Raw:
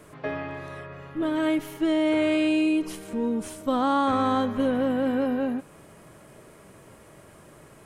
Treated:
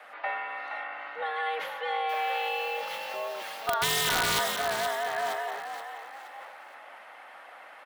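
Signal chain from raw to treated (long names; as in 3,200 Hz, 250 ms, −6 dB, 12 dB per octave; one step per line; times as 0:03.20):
three-way crossover with the lows and the highs turned down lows −24 dB, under 370 Hz, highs −13 dB, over 2,600 Hz
notch filter 2,200 Hz, Q 20
0:02.09–0:03.74: bit-depth reduction 8 bits, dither none
octave-band graphic EQ 250/2,000/4,000/8,000 Hz −8/+5/+6/−8 dB
in parallel at +1 dB: downward compressor 12 to 1, threshold −39 dBFS, peak gain reduction 19.5 dB
on the sum: frequency shifter +160 Hz
wrap-around overflow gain 17 dB
harmonic and percussive parts rebalanced harmonic −4 dB
on a send: echo with shifted repeats 472 ms, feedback 41%, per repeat +50 Hz, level −8 dB
on the sum: level that may fall only so fast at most 38 dB per second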